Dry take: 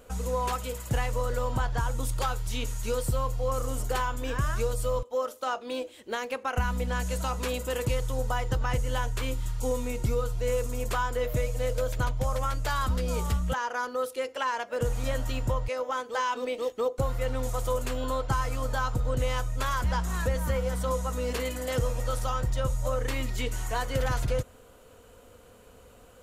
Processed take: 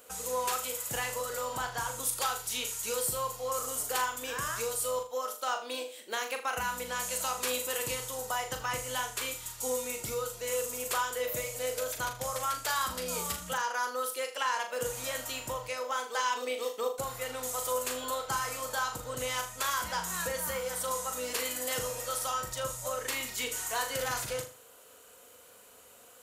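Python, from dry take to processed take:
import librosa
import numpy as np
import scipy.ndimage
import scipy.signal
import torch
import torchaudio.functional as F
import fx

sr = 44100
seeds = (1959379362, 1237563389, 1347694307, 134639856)

y = fx.highpass(x, sr, hz=740.0, slope=6)
y = fx.high_shelf(y, sr, hz=5700.0, db=10.5)
y = fx.room_flutter(y, sr, wall_m=6.8, rt60_s=0.35)
y = F.gain(torch.from_numpy(y), -1.0).numpy()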